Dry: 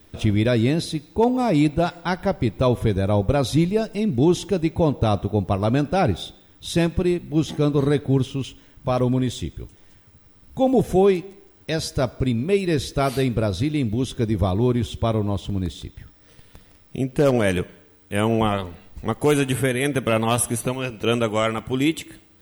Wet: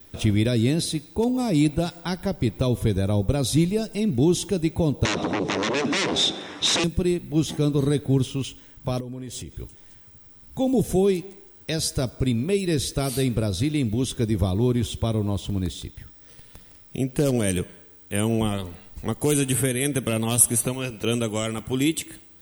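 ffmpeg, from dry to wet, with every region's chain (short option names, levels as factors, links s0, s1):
-filter_complex "[0:a]asettb=1/sr,asplit=3[s0][s1][s2];[s0]atrim=end=5.054[s3];[s1]atrim=start=5.05:end=6.84,asetpts=PTS-STARTPTS,afade=t=in:d=0.004:c=qsin,afade=t=out:st=1.786:d=0.004:c=qsin,acompressor=threshold=0.0891:ratio=4:attack=3.2:release=140:knee=1:detection=peak,aeval=exprs='0.251*sin(PI/2*7.94*val(0)/0.251)':c=same,highpass=270,equalizer=f=1000:t=q:w=4:g=5,equalizer=f=1900:t=q:w=4:g=3,equalizer=f=3200:t=q:w=4:g=-3,equalizer=f=4600:t=q:w=4:g=-9,lowpass=f=5700:w=0.5412,lowpass=f=5700:w=1.3066[s4];[s2]atrim=start=6.836[s5];[s3][s4]acrossfade=d=0.004:c1=hsin:c2=qsin[s6];[s6][s5]acrossfade=d=0.004:c1=qsin:c2=hsin,asettb=1/sr,asplit=3[s7][s8][s9];[s7]atrim=end=9.004[s10];[s8]atrim=start=9:end=9.54,asetpts=PTS-STARTPTS,afade=t=in:d=0.004:c=qsin,afade=t=out:st=0.536:d=0.004:c=qsin,equalizer=f=460:t=o:w=0.29:g=7,bandreject=f=3600:w=7,acompressor=threshold=0.0251:ratio=4:attack=3.2:release=140:knee=1:detection=peak[s11];[s9]atrim=start=9.536[s12];[s10][s11]acrossfade=d=0.004:c1=hsin:c2=qsin[s13];[s13][s12]acrossfade=d=0.004:c1=qsin:c2=hsin,highshelf=f=5300:g=8,acrossover=split=430|3000[s14][s15][s16];[s15]acompressor=threshold=0.0282:ratio=6[s17];[s14][s17][s16]amix=inputs=3:normalize=0,adynamicequalizer=threshold=0.00447:dfrequency=8700:dqfactor=5.2:tfrequency=8700:tqfactor=5.2:attack=5:release=100:ratio=0.375:range=2.5:mode=boostabove:tftype=bell,volume=0.891"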